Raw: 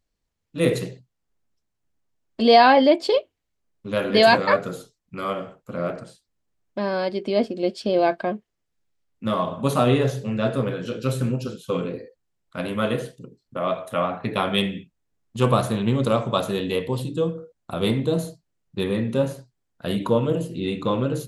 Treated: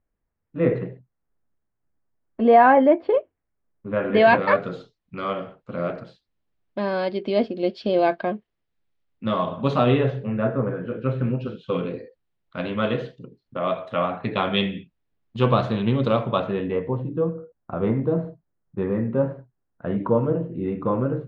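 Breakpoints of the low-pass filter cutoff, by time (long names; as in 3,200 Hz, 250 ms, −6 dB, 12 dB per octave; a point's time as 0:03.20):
low-pass filter 24 dB per octave
0:03.90 1,900 Hz
0:04.74 4,200 Hz
0:09.76 4,200 Hz
0:10.67 1,600 Hz
0:11.85 4,100 Hz
0:16.16 4,100 Hz
0:16.83 1,700 Hz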